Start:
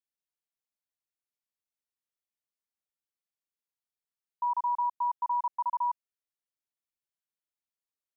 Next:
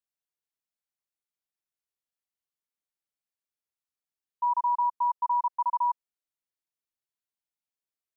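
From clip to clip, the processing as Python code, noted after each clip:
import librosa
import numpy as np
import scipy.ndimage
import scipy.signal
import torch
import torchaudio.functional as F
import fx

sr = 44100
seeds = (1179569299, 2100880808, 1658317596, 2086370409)

y = fx.dynamic_eq(x, sr, hz=1000.0, q=2.9, threshold_db=-40.0, ratio=4.0, max_db=6)
y = F.gain(torch.from_numpy(y), -2.5).numpy()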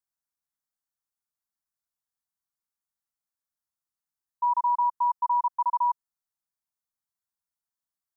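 y = fx.fixed_phaser(x, sr, hz=1100.0, stages=4)
y = F.gain(torch.from_numpy(y), 2.0).numpy()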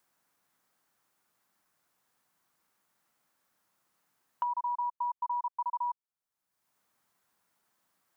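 y = fx.band_squash(x, sr, depth_pct=100)
y = F.gain(torch.from_numpy(y), -8.5).numpy()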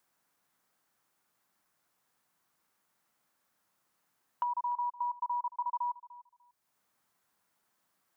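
y = fx.echo_feedback(x, sr, ms=297, feedback_pct=18, wet_db=-18.0)
y = F.gain(torch.from_numpy(y), -1.0).numpy()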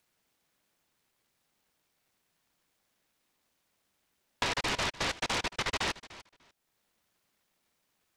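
y = fx.noise_mod_delay(x, sr, seeds[0], noise_hz=1200.0, depth_ms=0.29)
y = F.gain(torch.from_numpy(y), 1.5).numpy()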